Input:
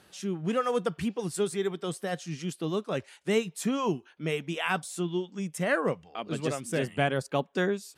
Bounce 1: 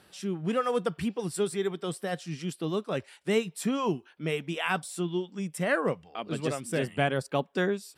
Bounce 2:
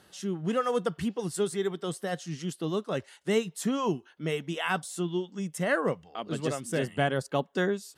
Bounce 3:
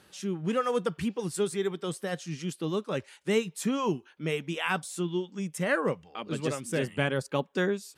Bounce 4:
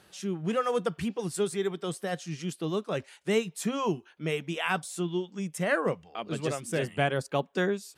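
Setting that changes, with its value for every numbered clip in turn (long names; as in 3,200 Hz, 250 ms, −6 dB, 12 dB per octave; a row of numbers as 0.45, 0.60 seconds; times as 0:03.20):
notch filter, centre frequency: 6,500, 2,400, 690, 260 Hertz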